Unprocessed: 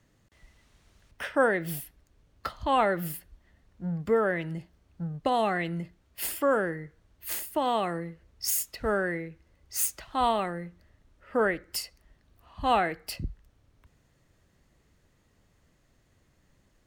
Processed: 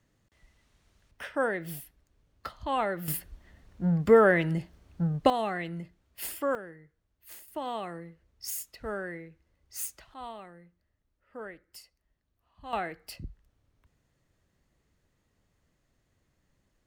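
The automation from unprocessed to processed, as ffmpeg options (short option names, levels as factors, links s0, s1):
-af "asetnsamples=n=441:p=0,asendcmd='3.08 volume volume 6dB;5.3 volume volume -4.5dB;6.55 volume volume -14.5dB;7.48 volume volume -8dB;10.14 volume volume -16.5dB;12.73 volume volume -7dB',volume=0.562"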